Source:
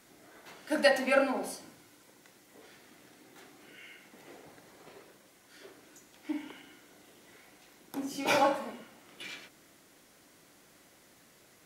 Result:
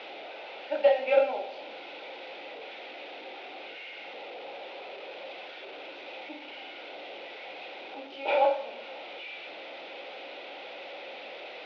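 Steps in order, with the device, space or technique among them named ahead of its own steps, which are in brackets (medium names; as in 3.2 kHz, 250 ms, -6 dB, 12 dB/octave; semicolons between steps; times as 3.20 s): digital answering machine (band-pass 360–3100 Hz; one-bit delta coder 32 kbps, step -36.5 dBFS; cabinet simulation 360–3700 Hz, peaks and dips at 540 Hz +9 dB, 800 Hz +7 dB, 1.1 kHz -9 dB, 1.7 kHz -8 dB, 2.5 kHz +8 dB, 3.6 kHz +5 dB); trim -2 dB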